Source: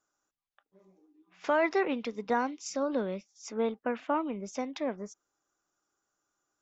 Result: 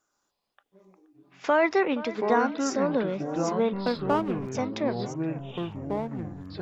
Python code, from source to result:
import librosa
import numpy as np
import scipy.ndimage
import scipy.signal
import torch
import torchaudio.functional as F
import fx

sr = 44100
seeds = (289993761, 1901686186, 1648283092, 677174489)

y = fx.backlash(x, sr, play_db=-33.5, at=(3.73, 4.52))
y = fx.echo_wet_lowpass(y, sr, ms=474, feedback_pct=43, hz=2300.0, wet_db=-16)
y = fx.echo_pitch(y, sr, ms=112, semitones=-6, count=3, db_per_echo=-6.0)
y = F.gain(torch.from_numpy(y), 4.5).numpy()